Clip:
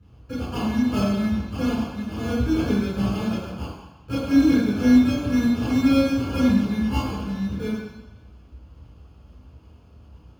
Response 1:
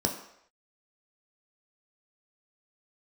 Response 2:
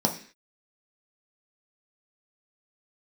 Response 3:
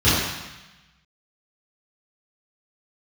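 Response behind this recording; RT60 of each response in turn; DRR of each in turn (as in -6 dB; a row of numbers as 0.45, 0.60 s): 3; not exponential, 0.45 s, 1.0 s; 1.5, 1.5, -15.0 dB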